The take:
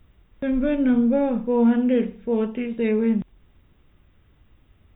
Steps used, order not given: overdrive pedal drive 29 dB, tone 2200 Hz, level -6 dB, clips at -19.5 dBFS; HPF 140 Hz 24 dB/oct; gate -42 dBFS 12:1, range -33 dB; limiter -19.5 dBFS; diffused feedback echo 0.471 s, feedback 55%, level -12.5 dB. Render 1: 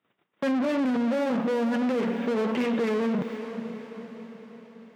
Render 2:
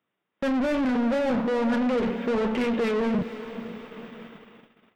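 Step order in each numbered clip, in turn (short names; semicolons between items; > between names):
overdrive pedal > gate > diffused feedback echo > limiter > HPF; HPF > limiter > overdrive pedal > diffused feedback echo > gate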